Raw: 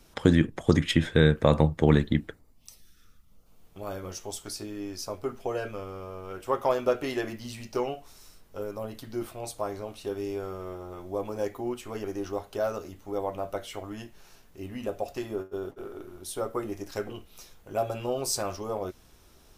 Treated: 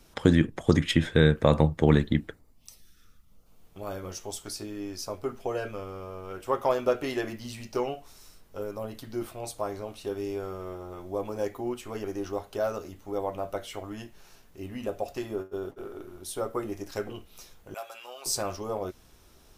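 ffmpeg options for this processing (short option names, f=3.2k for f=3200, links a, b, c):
-filter_complex "[0:a]asettb=1/sr,asplit=3[a][b][c];[a]atrim=end=17.744[d];[b]atrim=start=17.74:end=18.26,asetpts=PTS-STARTPTS,afade=t=in:d=0.004:c=qsin,afade=t=out:st=0.516:d=0.004:c=qsin,highpass=1.3k[e];[c]atrim=start=18.256[f];[d][e]acrossfade=d=0.004:c1=hsin:c2=qsin[g];[g][f]acrossfade=d=0.004:c1=qsin:c2=hsin"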